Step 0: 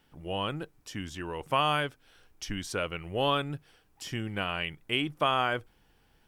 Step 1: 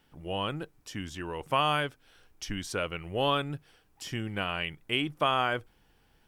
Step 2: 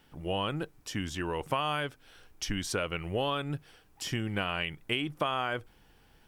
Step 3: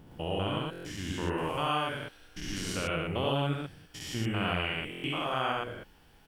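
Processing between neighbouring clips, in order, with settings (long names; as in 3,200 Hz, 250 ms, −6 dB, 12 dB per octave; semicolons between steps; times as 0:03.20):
no processing that can be heard
downward compressor 6 to 1, threshold −31 dBFS, peak gain reduction 9.5 dB; level +4 dB
spectrum averaged block by block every 200 ms; loudspeakers that aren't time-aligned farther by 24 metres −3 dB, 39 metres −1 dB; buffer that repeats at 0:00.71/0:04.90, samples 1,024, times 5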